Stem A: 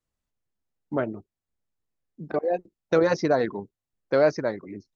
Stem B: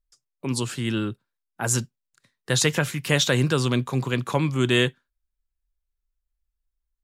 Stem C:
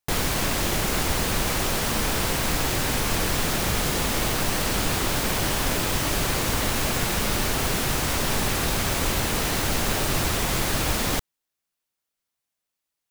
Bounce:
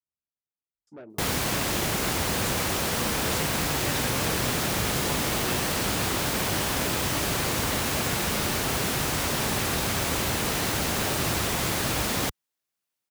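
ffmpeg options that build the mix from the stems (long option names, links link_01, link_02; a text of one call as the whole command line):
ffmpeg -i stem1.wav -i stem2.wav -i stem3.wav -filter_complex "[0:a]adynamicequalizer=threshold=0.02:dfrequency=380:dqfactor=1.2:tfrequency=380:tqfactor=1.2:attack=5:release=100:ratio=0.375:range=3:mode=boostabove:tftype=bell,asoftclip=type=tanh:threshold=-21.5dB,volume=-16.5dB[link_01];[1:a]adelay=750,volume=-16dB[link_02];[2:a]adelay=1100,volume=-1.5dB[link_03];[link_01][link_02][link_03]amix=inputs=3:normalize=0,highpass=68" out.wav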